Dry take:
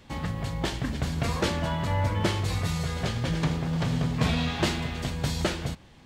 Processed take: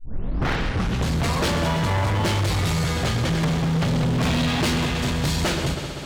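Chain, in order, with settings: tape start at the beginning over 1.12 s; multi-head echo 65 ms, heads second and third, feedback 73%, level -12.5 dB; overloaded stage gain 27.5 dB; gain +8.5 dB

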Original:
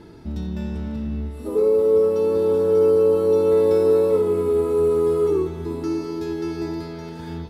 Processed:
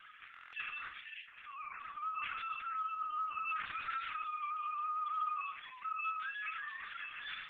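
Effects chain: sine-wave speech; steep high-pass 1300 Hz 48 dB/oct; limiter -50.5 dBFS, peak gain reduction 10 dB; flutter echo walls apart 5.7 m, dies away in 0.45 s; LPC vocoder at 8 kHz pitch kept; stuck buffer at 0.32, samples 1024, times 8; gain +16.5 dB; Opus 12 kbps 48000 Hz

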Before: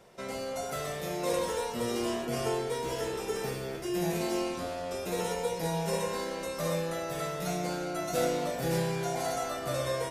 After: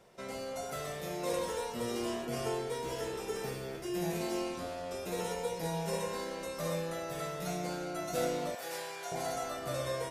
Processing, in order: 8.55–9.12 HPF 700 Hz 12 dB/oct; gain -4 dB

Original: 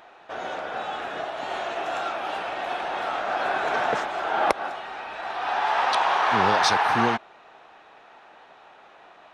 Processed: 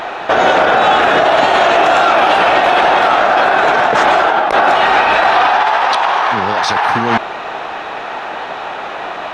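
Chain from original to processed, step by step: high shelf 7400 Hz -6 dB; negative-ratio compressor -31 dBFS, ratio -1; maximiser +23.5 dB; gain -1 dB

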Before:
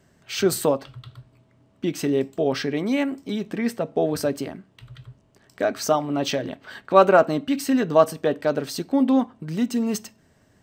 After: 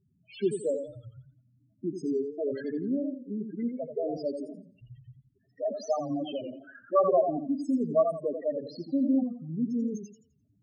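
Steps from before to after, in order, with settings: loudest bins only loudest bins 4; warbling echo 86 ms, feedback 32%, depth 117 cents, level -7 dB; gain -6.5 dB

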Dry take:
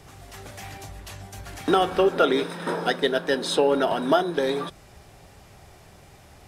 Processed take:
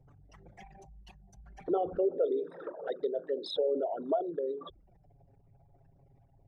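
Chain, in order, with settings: formant sharpening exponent 3; envelope flanger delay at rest 8.4 ms, full sweep at -19 dBFS; gain -8 dB

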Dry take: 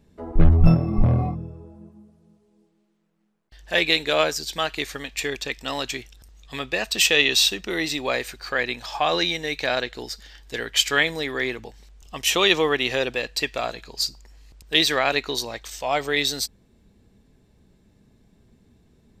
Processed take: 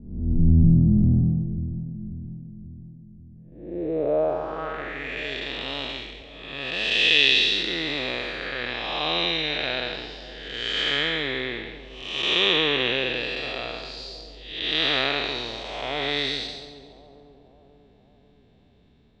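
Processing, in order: time blur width 0.366 s; low-pass sweep 220 Hz -> 3400 Hz, 3.45–5.35; split-band echo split 830 Hz, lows 0.539 s, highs 0.139 s, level -14.5 dB

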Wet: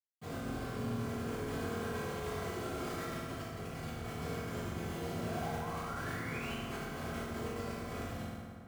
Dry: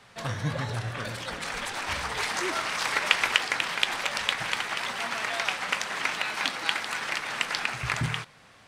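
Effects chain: minimum comb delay 3.1 ms; elliptic band-pass 150–8200 Hz, stop band 40 dB; compressor 5:1, threshold -40 dBFS, peak gain reduction 20 dB; 4.54–5.1 fifteen-band EQ 400 Hz +12 dB, 1600 Hz -11 dB, 6300 Hz +6 dB; LFO notch square 9.4 Hz 680–1800 Hz; dynamic EQ 4100 Hz, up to -5 dB, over -59 dBFS, Q 3.5; Schmitt trigger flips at -40.5 dBFS; 5.11–6.49 painted sound rise 570–3100 Hz -51 dBFS; reverb RT60 2.2 s, pre-delay 47 ms; gain +11.5 dB

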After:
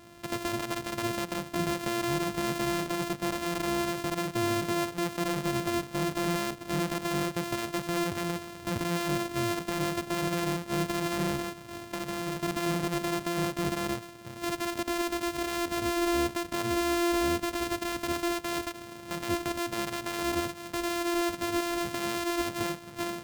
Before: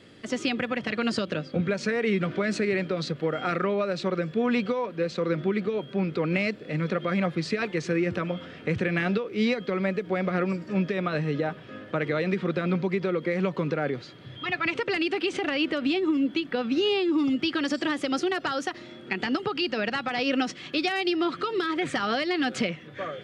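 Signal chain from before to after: sample sorter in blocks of 128 samples; limiter -22 dBFS, peak gain reduction 9 dB; 11.36–12.43 compressor 2.5:1, threshold -32 dBFS, peak gain reduction 4 dB

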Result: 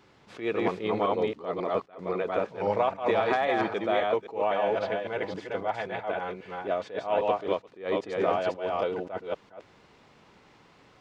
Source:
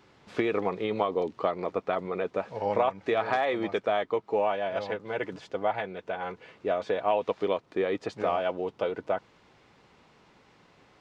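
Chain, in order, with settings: reverse delay 0.267 s, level -2 dB; attack slew limiter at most 170 dB/s

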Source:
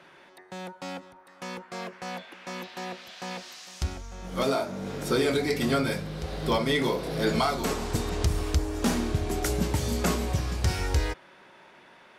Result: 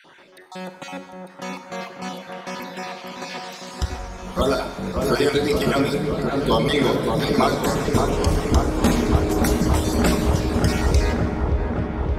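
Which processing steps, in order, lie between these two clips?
random spectral dropouts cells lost 30%; dark delay 0.572 s, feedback 79%, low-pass 1400 Hz, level -4 dB; Schroeder reverb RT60 1.3 s, combs from 32 ms, DRR 9.5 dB; gain +6 dB

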